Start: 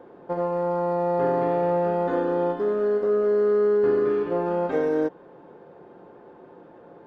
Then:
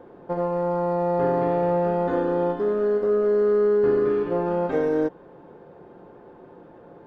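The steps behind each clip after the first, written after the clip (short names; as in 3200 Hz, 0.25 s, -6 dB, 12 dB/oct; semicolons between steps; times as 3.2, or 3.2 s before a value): low shelf 110 Hz +10.5 dB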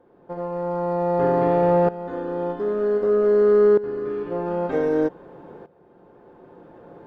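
tremolo saw up 0.53 Hz, depth 85%; gain +5 dB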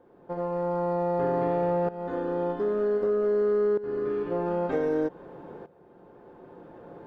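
compressor 4:1, threshold -22 dBFS, peak gain reduction 8 dB; gain -1 dB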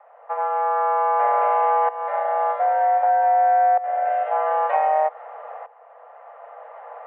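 mistuned SSB +310 Hz 160–2600 Hz; gain +7 dB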